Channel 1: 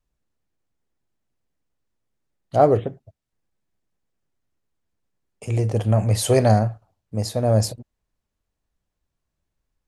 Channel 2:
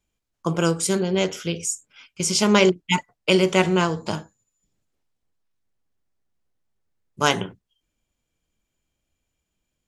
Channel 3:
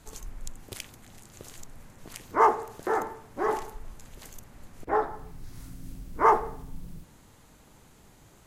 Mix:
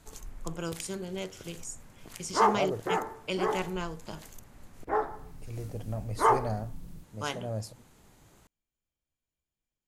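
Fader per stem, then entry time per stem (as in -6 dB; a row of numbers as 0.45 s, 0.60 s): -17.0 dB, -15.0 dB, -3.0 dB; 0.00 s, 0.00 s, 0.00 s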